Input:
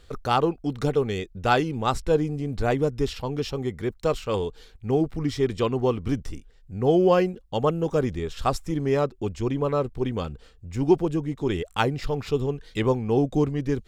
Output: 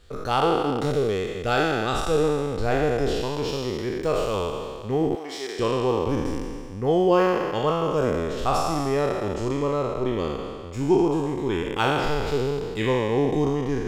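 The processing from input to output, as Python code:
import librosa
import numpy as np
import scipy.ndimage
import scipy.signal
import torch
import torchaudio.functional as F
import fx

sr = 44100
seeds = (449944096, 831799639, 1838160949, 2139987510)

y = fx.spec_trails(x, sr, decay_s=2.03)
y = fx.peak_eq(y, sr, hz=960.0, db=-9.5, octaves=0.49, at=(0.91, 2.24))
y = fx.highpass(y, sr, hz=640.0, slope=12, at=(5.15, 5.59))
y = y * librosa.db_to_amplitude(-3.0)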